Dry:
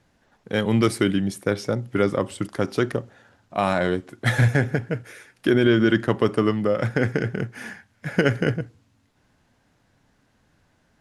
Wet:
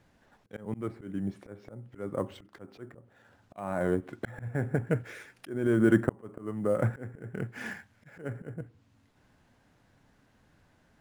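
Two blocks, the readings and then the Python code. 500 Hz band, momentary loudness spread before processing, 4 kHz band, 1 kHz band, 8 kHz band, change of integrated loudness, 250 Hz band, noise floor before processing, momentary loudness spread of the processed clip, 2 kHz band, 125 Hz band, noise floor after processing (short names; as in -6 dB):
-10.0 dB, 12 LU, under -20 dB, -13.0 dB, under -15 dB, -9.0 dB, -9.0 dB, -65 dBFS, 21 LU, -13.0 dB, -10.5 dB, -66 dBFS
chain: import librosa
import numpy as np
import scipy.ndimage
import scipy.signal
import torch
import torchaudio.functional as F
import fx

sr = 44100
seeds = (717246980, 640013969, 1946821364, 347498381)

p1 = fx.env_lowpass_down(x, sr, base_hz=1400.0, full_db=-19.5)
p2 = fx.auto_swell(p1, sr, attack_ms=556.0)
p3 = fx.sample_hold(p2, sr, seeds[0], rate_hz=9200.0, jitter_pct=0)
p4 = p2 + F.gain(torch.from_numpy(p3), -9.0).numpy()
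y = F.gain(torch.from_numpy(p4), -3.5).numpy()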